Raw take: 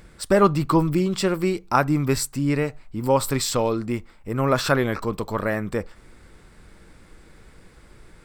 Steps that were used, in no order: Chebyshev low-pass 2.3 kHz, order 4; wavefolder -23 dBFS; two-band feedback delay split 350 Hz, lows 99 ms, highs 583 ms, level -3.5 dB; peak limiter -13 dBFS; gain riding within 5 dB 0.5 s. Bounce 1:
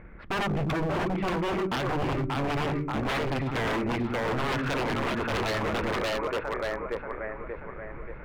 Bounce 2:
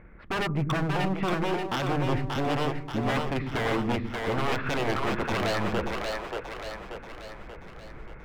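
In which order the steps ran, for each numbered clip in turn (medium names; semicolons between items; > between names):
Chebyshev low-pass > peak limiter > two-band feedback delay > gain riding > wavefolder; gain riding > Chebyshev low-pass > peak limiter > wavefolder > two-band feedback delay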